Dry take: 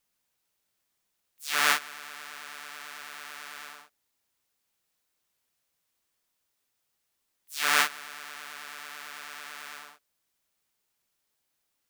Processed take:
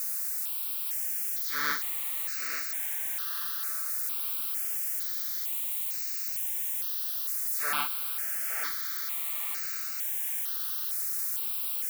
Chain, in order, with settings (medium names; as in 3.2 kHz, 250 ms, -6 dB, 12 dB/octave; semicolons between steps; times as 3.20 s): zero-crossing glitches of -19 dBFS; tilt shelf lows +5 dB, about 1.5 kHz; on a send: thinning echo 859 ms, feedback 37%, high-pass 420 Hz, level -7 dB; on the sum: stepped phaser 2.2 Hz 860–3300 Hz; trim -4.5 dB